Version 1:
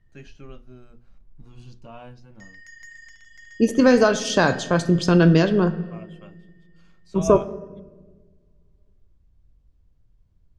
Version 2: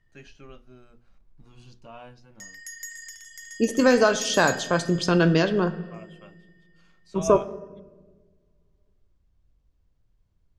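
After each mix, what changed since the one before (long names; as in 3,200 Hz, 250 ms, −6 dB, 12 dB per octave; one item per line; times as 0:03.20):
background: remove high-frequency loss of the air 200 metres
master: add low-shelf EQ 340 Hz −7.5 dB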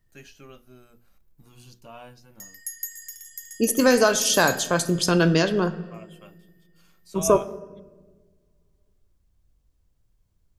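background −8.0 dB
master: remove high-frequency loss of the air 110 metres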